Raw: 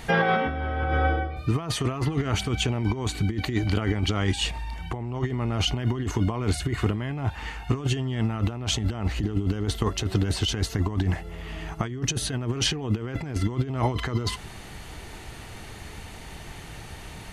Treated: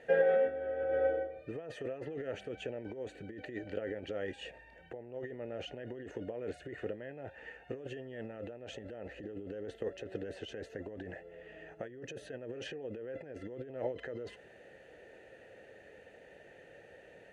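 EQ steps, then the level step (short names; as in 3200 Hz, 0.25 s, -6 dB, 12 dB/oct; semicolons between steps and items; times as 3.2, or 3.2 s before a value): vowel filter e; band shelf 3200 Hz -8.5 dB; high shelf 7200 Hz -5 dB; +3.0 dB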